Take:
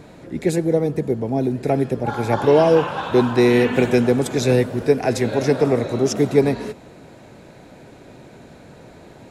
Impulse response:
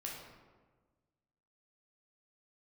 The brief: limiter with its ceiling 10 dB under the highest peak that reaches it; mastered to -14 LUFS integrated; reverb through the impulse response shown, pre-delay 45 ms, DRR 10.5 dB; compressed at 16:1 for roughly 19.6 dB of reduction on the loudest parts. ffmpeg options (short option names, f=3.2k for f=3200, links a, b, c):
-filter_complex "[0:a]acompressor=threshold=-29dB:ratio=16,alimiter=level_in=3.5dB:limit=-24dB:level=0:latency=1,volume=-3.5dB,asplit=2[a][b];[1:a]atrim=start_sample=2205,adelay=45[c];[b][c]afir=irnorm=-1:irlink=0,volume=-10dB[d];[a][d]amix=inputs=2:normalize=0,volume=24dB"